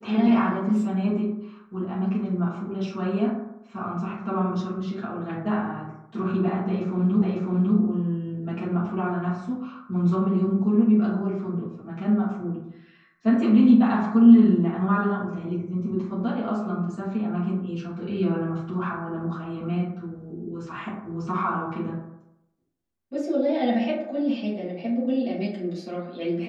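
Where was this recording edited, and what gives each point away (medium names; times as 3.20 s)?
7.22 s: repeat of the last 0.55 s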